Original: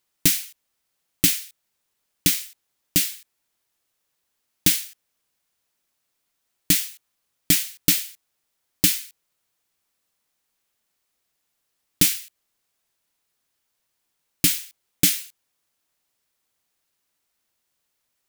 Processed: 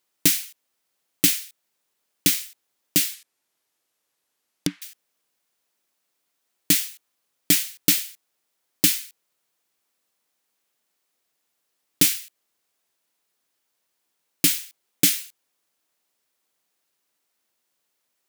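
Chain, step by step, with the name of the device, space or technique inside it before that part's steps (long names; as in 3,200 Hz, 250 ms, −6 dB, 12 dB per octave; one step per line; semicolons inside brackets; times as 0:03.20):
filter by subtraction (in parallel: low-pass filter 340 Hz 12 dB per octave + polarity inversion)
0:03.14–0:04.82: on the sum: treble cut that deepens with the level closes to 900 Hz, closed at −20.5 dBFS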